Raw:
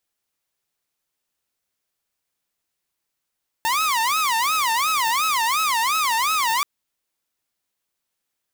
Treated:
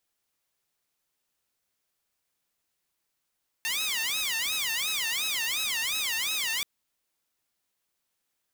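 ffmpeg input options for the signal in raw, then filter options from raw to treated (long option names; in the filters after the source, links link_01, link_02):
-f lavfi -i "aevalsrc='0.158*(2*mod((1092.5*t-197.5/(2*PI*2.8)*sin(2*PI*2.8*t)),1)-1)':duration=2.98:sample_rate=44100"
-af "aeval=exprs='(mod(15.8*val(0)+1,2)-1)/15.8':channel_layout=same"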